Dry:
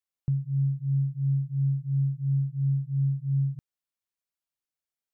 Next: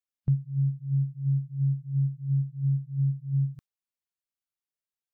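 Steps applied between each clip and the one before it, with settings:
noise reduction from a noise print of the clip's start 9 dB
level +3.5 dB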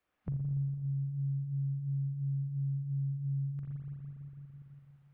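brickwall limiter −28 dBFS, peak gain reduction 11 dB
convolution reverb RT60 2.1 s, pre-delay 41 ms, DRR −3.5 dB
multiband upward and downward compressor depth 70%
level −3.5 dB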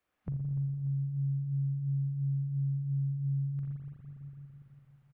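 repeating echo 295 ms, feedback 49%, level −14.5 dB

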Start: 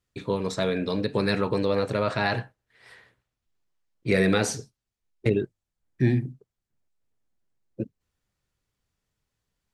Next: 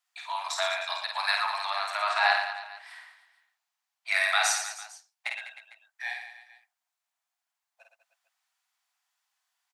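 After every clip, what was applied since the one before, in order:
Butterworth high-pass 680 Hz 96 dB per octave
on a send: reverse bouncing-ball delay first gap 50 ms, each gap 1.3×, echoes 5
on the sum: level +2.5 dB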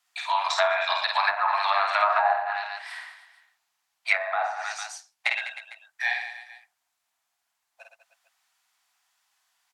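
treble cut that deepens with the level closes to 690 Hz, closed at −22 dBFS
level +8.5 dB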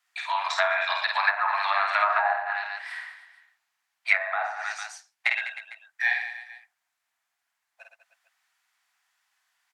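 parametric band 1,800 Hz +7.5 dB 1.1 octaves
level −4.5 dB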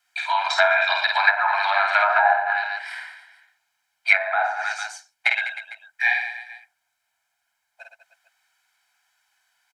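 comb filter 1.3 ms, depth 75%
level +3 dB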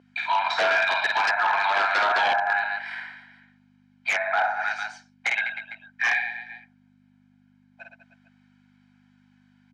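wave folding −15 dBFS
mains hum 50 Hz, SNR 11 dB
band-pass filter 460–3,400 Hz

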